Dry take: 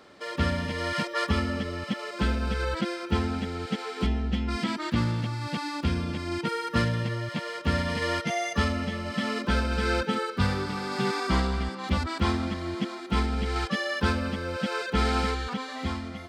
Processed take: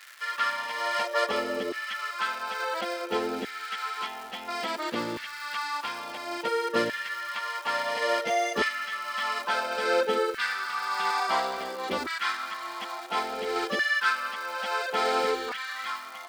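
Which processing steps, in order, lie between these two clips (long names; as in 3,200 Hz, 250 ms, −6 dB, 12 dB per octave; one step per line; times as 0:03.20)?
surface crackle 530 per second −37 dBFS
auto-filter high-pass saw down 0.58 Hz 370–1,800 Hz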